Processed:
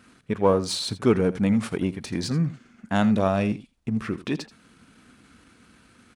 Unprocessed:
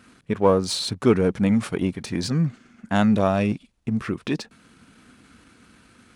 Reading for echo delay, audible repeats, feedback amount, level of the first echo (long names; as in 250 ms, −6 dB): 82 ms, 1, repeats not evenly spaced, −16.5 dB